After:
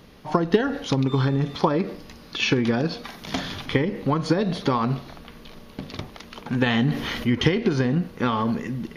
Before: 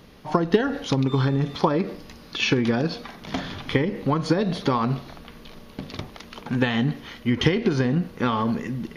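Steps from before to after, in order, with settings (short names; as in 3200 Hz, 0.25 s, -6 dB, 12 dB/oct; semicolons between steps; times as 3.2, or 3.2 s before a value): 3.04–3.66 high shelf 3500 Hz +8.5 dB; 6.66–7.35 fast leveller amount 50%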